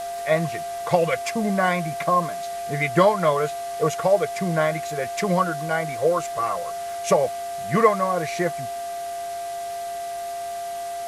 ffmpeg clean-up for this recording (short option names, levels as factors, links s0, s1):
-af "adeclick=t=4,bandreject=f=395.1:t=h:w=4,bandreject=f=790.2:t=h:w=4,bandreject=f=1185.3:t=h:w=4,bandreject=f=1580.4:t=h:w=4,bandreject=f=1975.5:t=h:w=4,bandreject=f=690:w=30,afwtdn=0.0089"